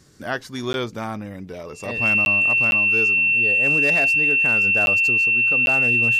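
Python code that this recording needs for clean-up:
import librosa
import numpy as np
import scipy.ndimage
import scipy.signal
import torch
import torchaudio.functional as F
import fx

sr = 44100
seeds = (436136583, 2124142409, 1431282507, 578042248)

y = fx.fix_declip(x, sr, threshold_db=-12.0)
y = fx.notch(y, sr, hz=2700.0, q=30.0)
y = fx.fix_interpolate(y, sr, at_s=(0.73, 2.25, 2.71, 4.86, 5.66), length_ms=11.0)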